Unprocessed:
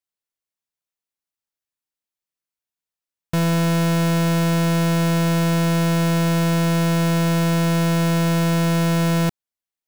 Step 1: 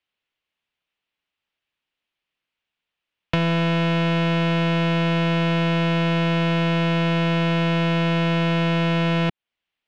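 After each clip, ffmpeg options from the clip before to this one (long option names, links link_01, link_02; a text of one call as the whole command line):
ffmpeg -i in.wav -filter_complex "[0:a]lowpass=frequency=2900:width_type=q:width=2.5,acrossover=split=220|1100[link_01][link_02][link_03];[link_01]acompressor=threshold=-35dB:ratio=4[link_04];[link_02]acompressor=threshold=-34dB:ratio=4[link_05];[link_03]acompressor=threshold=-36dB:ratio=4[link_06];[link_04][link_05][link_06]amix=inputs=3:normalize=0,volume=8.5dB" out.wav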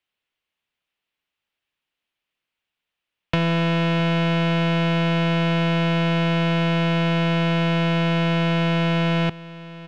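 ffmpeg -i in.wav -af "aecho=1:1:660:0.133" out.wav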